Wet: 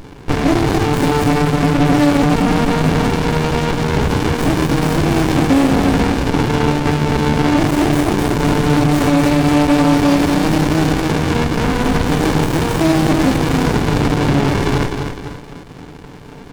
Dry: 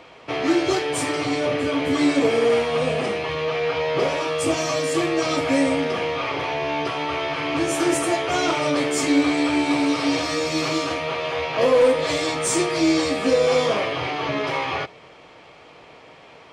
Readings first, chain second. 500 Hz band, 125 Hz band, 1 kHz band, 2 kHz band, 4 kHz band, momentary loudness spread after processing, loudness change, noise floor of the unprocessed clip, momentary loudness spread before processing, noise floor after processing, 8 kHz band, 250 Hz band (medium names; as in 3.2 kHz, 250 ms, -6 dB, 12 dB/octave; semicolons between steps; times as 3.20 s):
+2.0 dB, +19.0 dB, +6.5 dB, +4.0 dB, +2.5 dB, 4 LU, +6.5 dB, -47 dBFS, 6 LU, -35 dBFS, +1.5 dB, +9.5 dB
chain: treble shelf 6.8 kHz +10 dB; comb 6.9 ms, depth 75%; on a send: feedback delay 252 ms, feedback 45%, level -6.5 dB; on the sum: loudness maximiser +12 dB; sliding maximum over 65 samples